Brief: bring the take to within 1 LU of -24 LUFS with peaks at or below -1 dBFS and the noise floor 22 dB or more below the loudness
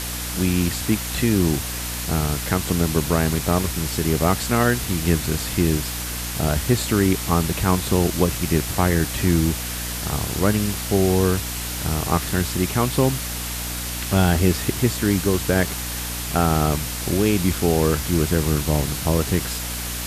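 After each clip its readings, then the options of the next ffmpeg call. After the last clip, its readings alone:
hum 60 Hz; harmonics up to 300 Hz; hum level -30 dBFS; noise floor -29 dBFS; noise floor target -44 dBFS; loudness -21.5 LUFS; peak -5.0 dBFS; loudness target -24.0 LUFS
-> -af "bandreject=f=60:t=h:w=6,bandreject=f=120:t=h:w=6,bandreject=f=180:t=h:w=6,bandreject=f=240:t=h:w=6,bandreject=f=300:t=h:w=6"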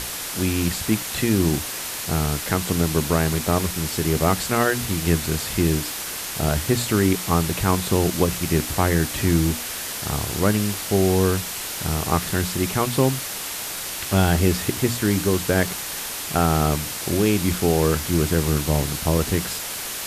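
hum none; noise floor -31 dBFS; noise floor target -44 dBFS
-> -af "afftdn=nr=13:nf=-31"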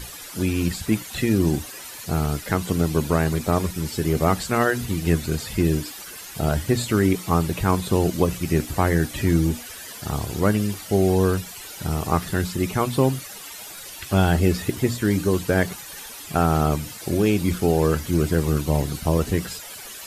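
noise floor -38 dBFS; noise floor target -45 dBFS
-> -af "afftdn=nr=7:nf=-38"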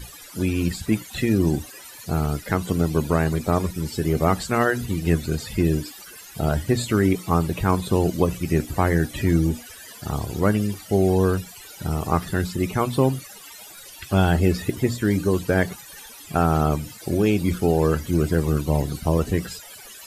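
noise floor -43 dBFS; noise floor target -45 dBFS
-> -af "afftdn=nr=6:nf=-43"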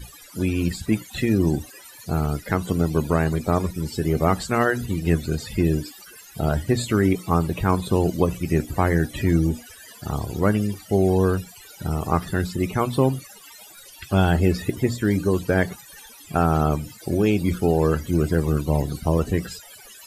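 noise floor -46 dBFS; loudness -23.0 LUFS; peak -5.5 dBFS; loudness target -24.0 LUFS
-> -af "volume=-1dB"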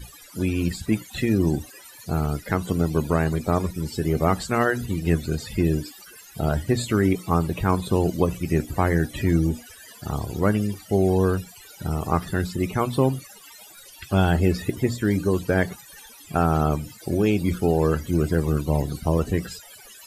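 loudness -24.0 LUFS; peak -6.5 dBFS; noise floor -47 dBFS

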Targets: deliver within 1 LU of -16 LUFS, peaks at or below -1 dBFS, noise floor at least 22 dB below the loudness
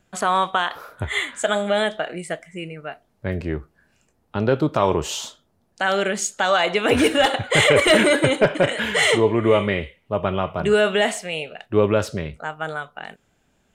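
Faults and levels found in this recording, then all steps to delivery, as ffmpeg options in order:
loudness -20.5 LUFS; peak -1.5 dBFS; loudness target -16.0 LUFS
-> -af "volume=4.5dB,alimiter=limit=-1dB:level=0:latency=1"

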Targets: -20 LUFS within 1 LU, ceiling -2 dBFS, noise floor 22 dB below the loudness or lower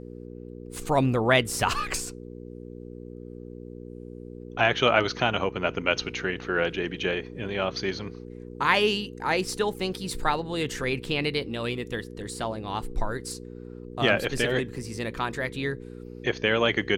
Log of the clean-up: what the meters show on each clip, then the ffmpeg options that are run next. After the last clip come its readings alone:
hum 60 Hz; harmonics up to 480 Hz; hum level -38 dBFS; loudness -27.0 LUFS; peak -5.5 dBFS; loudness target -20.0 LUFS
-> -af "bandreject=f=60:t=h:w=4,bandreject=f=120:t=h:w=4,bandreject=f=180:t=h:w=4,bandreject=f=240:t=h:w=4,bandreject=f=300:t=h:w=4,bandreject=f=360:t=h:w=4,bandreject=f=420:t=h:w=4,bandreject=f=480:t=h:w=4"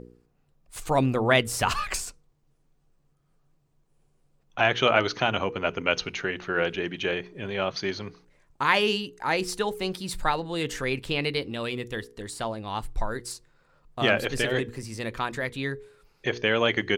hum none; loudness -27.0 LUFS; peak -5.0 dBFS; loudness target -20.0 LUFS
-> -af "volume=7dB,alimiter=limit=-2dB:level=0:latency=1"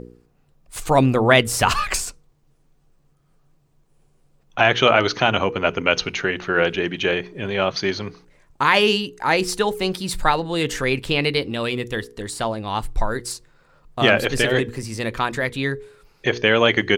loudness -20.5 LUFS; peak -2.0 dBFS; noise floor -61 dBFS

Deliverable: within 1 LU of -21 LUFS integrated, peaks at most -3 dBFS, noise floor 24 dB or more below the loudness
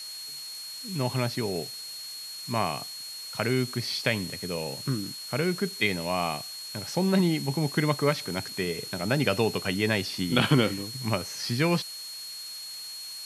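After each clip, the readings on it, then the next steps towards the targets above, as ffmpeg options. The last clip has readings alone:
steady tone 4300 Hz; tone level -38 dBFS; noise floor -40 dBFS; noise floor target -53 dBFS; loudness -28.5 LUFS; peak -5.0 dBFS; loudness target -21.0 LUFS
-> -af "bandreject=f=4.3k:w=30"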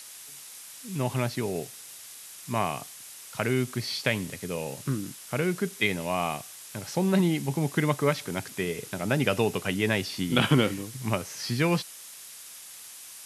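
steady tone none; noise floor -45 dBFS; noise floor target -53 dBFS
-> -af "afftdn=nr=8:nf=-45"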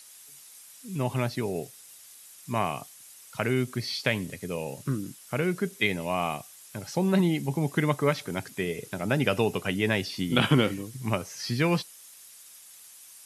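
noise floor -50 dBFS; noise floor target -53 dBFS
-> -af "afftdn=nr=6:nf=-50"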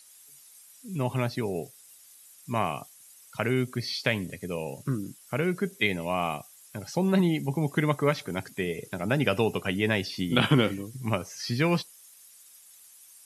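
noise floor -54 dBFS; loudness -28.5 LUFS; peak -5.5 dBFS; loudness target -21.0 LUFS
-> -af "volume=7.5dB,alimiter=limit=-3dB:level=0:latency=1"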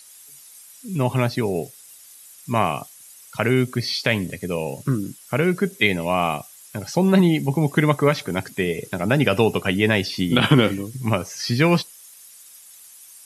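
loudness -21.5 LUFS; peak -3.0 dBFS; noise floor -46 dBFS

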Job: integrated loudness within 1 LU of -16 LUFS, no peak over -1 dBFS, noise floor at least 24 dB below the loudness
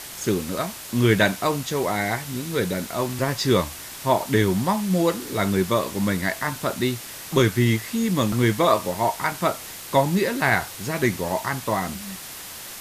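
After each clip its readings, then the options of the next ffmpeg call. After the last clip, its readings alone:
noise floor -38 dBFS; noise floor target -47 dBFS; loudness -23.0 LUFS; peak -4.0 dBFS; loudness target -16.0 LUFS
-> -af "afftdn=nr=9:nf=-38"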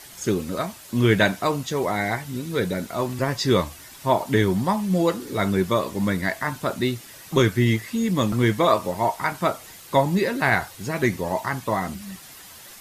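noise floor -44 dBFS; noise floor target -48 dBFS
-> -af "afftdn=nr=6:nf=-44"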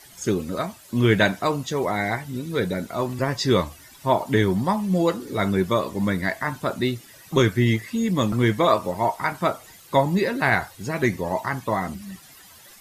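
noise floor -48 dBFS; loudness -23.5 LUFS; peak -4.0 dBFS; loudness target -16.0 LUFS
-> -af "volume=7.5dB,alimiter=limit=-1dB:level=0:latency=1"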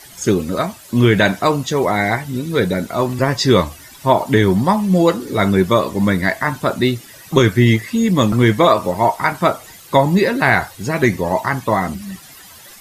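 loudness -16.5 LUFS; peak -1.0 dBFS; noise floor -41 dBFS

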